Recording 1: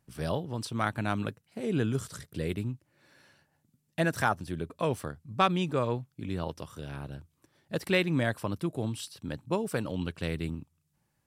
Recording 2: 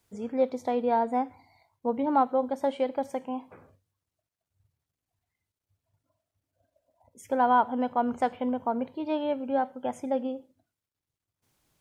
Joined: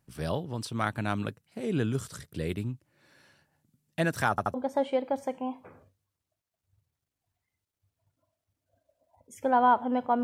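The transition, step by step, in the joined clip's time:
recording 1
4.30 s: stutter in place 0.08 s, 3 plays
4.54 s: go over to recording 2 from 2.41 s

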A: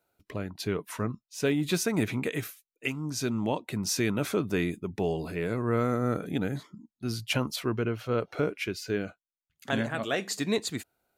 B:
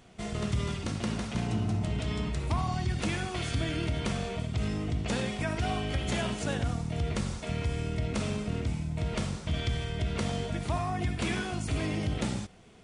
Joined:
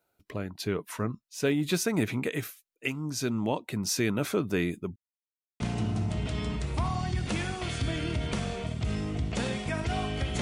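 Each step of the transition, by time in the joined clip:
A
4.96–5.60 s: mute
5.60 s: go over to B from 1.33 s

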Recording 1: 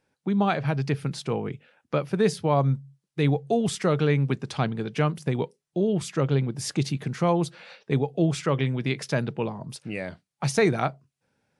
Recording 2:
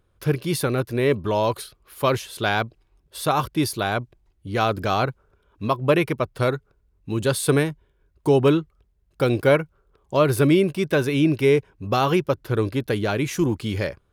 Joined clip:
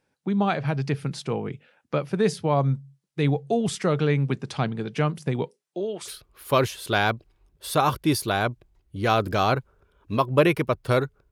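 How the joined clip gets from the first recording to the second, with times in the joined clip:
recording 1
5.49–6.14 s: high-pass 220 Hz -> 710 Hz
6.08 s: go over to recording 2 from 1.59 s, crossfade 0.12 s

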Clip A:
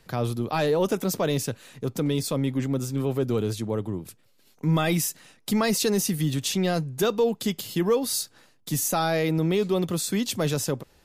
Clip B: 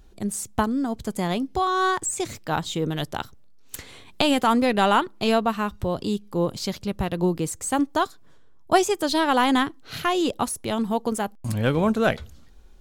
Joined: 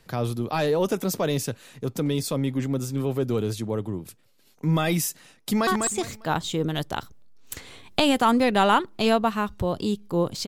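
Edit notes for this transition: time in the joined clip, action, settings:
clip A
5.41–5.67 s: echo throw 200 ms, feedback 25%, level -4.5 dB
5.67 s: go over to clip B from 1.89 s

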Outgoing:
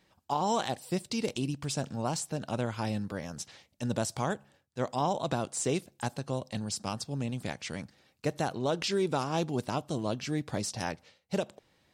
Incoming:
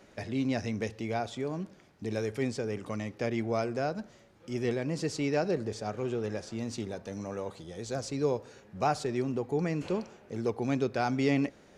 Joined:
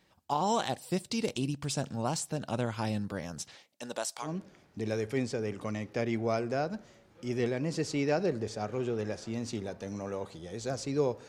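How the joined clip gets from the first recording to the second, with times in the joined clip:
outgoing
3.54–4.29 s: high-pass 210 Hz -> 1.1 kHz
4.25 s: go over to incoming from 1.50 s, crossfade 0.08 s

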